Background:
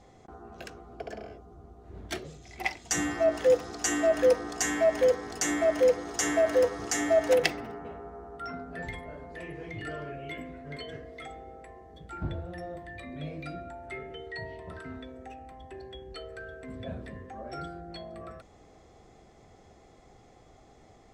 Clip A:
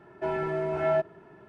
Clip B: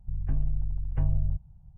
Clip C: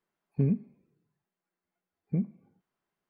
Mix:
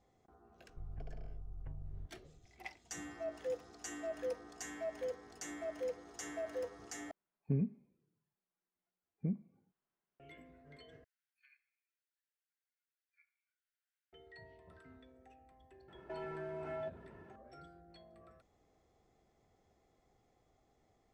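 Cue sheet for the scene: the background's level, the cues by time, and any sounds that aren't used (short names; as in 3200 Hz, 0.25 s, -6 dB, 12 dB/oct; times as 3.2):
background -17.5 dB
0.69 add B -13 dB + compressor, threshold -28 dBFS
7.11 replace with C -7.5 dB + air absorption 140 m
11.04 replace with C -7 dB + steep high-pass 1400 Hz 72 dB/oct
15.88 add A -6 dB + compressor 3:1, threshold -37 dBFS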